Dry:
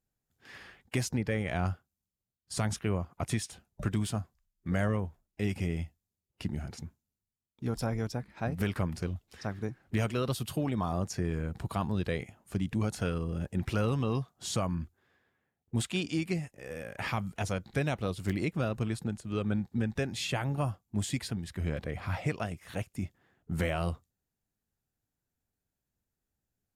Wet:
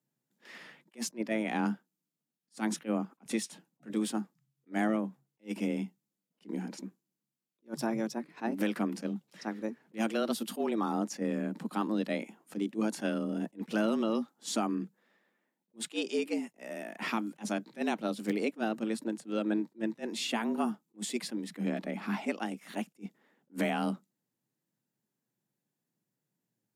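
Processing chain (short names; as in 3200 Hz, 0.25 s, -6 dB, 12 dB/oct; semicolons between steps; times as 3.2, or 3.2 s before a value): frequency shift +110 Hz; attack slew limiter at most 360 dB/s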